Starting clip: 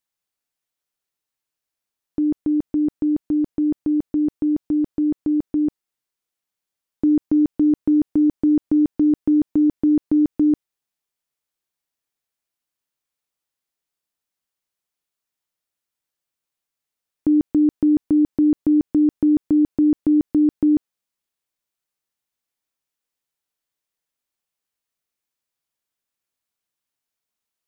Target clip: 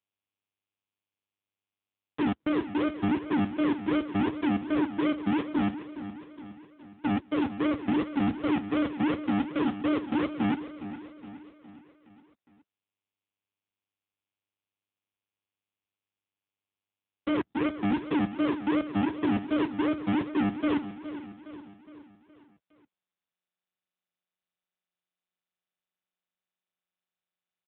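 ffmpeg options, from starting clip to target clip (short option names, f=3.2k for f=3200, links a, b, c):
-af "highpass=69,agate=range=-33dB:threshold=-30dB:ratio=3:detection=peak,alimiter=limit=-18dB:level=0:latency=1:release=177,aresample=11025,acrusher=samples=17:mix=1:aa=0.000001:lfo=1:lforange=10.2:lforate=2.7,aresample=44100,volume=31.5dB,asoftclip=hard,volume=-31.5dB,aecho=1:1:415|830|1245|1660|2075:0.237|0.123|0.0641|0.0333|0.0173,volume=7.5dB" -ar 8000 -c:a libopencore_amrnb -b:a 5900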